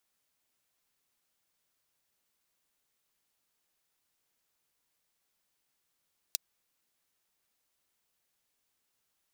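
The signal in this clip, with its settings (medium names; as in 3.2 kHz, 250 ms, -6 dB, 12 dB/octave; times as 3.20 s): closed hi-hat, high-pass 4.1 kHz, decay 0.02 s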